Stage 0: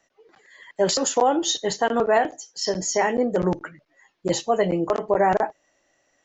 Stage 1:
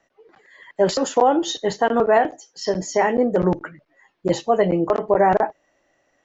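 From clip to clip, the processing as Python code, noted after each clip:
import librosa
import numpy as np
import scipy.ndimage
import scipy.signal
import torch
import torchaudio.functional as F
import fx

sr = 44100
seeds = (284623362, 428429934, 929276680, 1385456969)

y = fx.lowpass(x, sr, hz=2200.0, slope=6)
y = y * 10.0 ** (3.5 / 20.0)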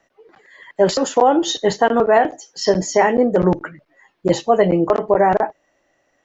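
y = fx.rider(x, sr, range_db=3, speed_s=0.5)
y = y * 10.0 ** (4.0 / 20.0)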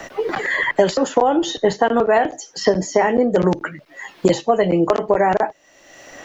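y = fx.band_squash(x, sr, depth_pct=100)
y = y * 10.0 ** (-1.5 / 20.0)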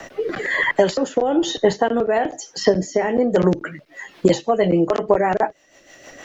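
y = fx.rotary_switch(x, sr, hz=1.1, then_hz=6.3, switch_at_s=3.26)
y = y * 10.0 ** (1.0 / 20.0)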